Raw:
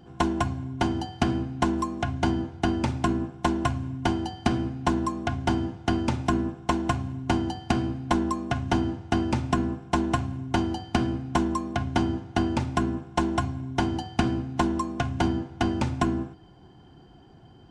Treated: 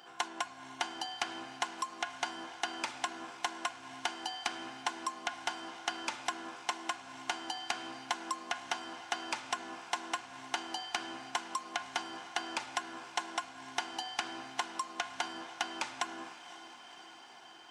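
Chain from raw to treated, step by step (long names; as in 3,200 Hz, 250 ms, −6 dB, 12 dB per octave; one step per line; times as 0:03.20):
high-pass filter 1,100 Hz 12 dB per octave
downward compressor, threshold −41 dBFS, peak gain reduction 15.5 dB
on a send: feedback delay with all-pass diffusion 526 ms, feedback 68%, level −15 dB
on the sum: level +8 dB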